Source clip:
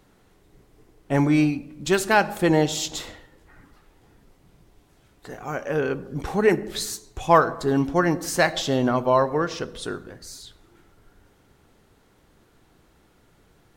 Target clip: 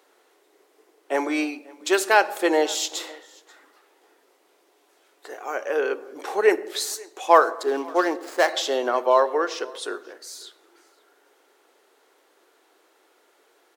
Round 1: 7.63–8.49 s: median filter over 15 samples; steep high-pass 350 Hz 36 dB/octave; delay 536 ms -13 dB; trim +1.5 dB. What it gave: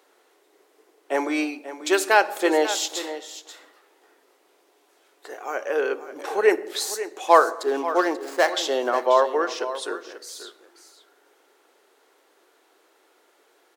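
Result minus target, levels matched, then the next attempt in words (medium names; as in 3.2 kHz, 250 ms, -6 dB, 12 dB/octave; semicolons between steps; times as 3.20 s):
echo-to-direct +12 dB
7.63–8.49 s: median filter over 15 samples; steep high-pass 350 Hz 36 dB/octave; delay 536 ms -25 dB; trim +1.5 dB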